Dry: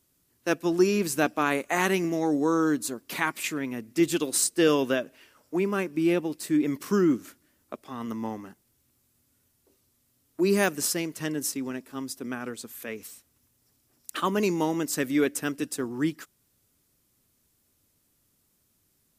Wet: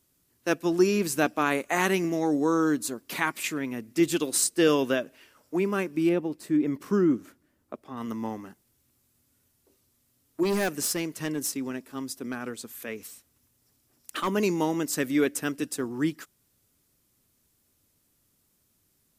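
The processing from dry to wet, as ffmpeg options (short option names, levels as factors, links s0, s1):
-filter_complex "[0:a]asettb=1/sr,asplit=3[s0][s1][s2];[s0]atrim=end=6.094[s3];[s1]atrim=start=6.09:end=7.97,asetpts=PTS-STARTPTS,afade=t=in:d=0.004:c=qsin,afade=t=out:st=1.876:d=0.004:c=qsin,highshelf=f=2000:g=-10[s4];[s2]atrim=start=7.966[s5];[s3][s4]acrossfade=d=0.004:c1=hsin:c2=qsin[s6];[s6][s5]acrossfade=d=0.004:c1=qsin:c2=hsin,asettb=1/sr,asplit=3[s7][s8][s9];[s7]atrim=end=10.434[s10];[s8]atrim=start=10.43:end=14.28,asetpts=PTS-STARTPTS,afade=t=in:d=0.004:c=qsin,afade=t=out:st=3.846:d=0.004:c=qsin,asoftclip=type=hard:threshold=0.075[s11];[s9]atrim=start=14.276[s12];[s10][s11]acrossfade=d=0.004:c1=hsin:c2=qsin[s13];[s13][s12]acrossfade=d=0.004:c1=qsin:c2=hsin"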